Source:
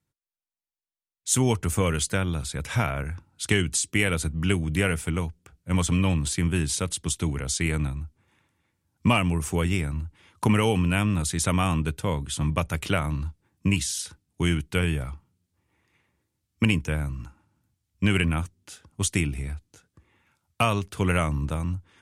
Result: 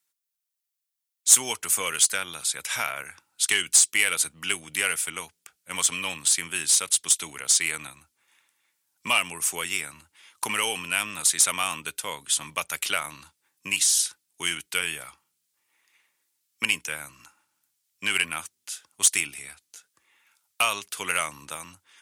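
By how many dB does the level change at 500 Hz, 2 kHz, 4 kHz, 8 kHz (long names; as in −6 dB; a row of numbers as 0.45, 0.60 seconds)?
−9.5, +3.0, +5.5, +9.5 decibels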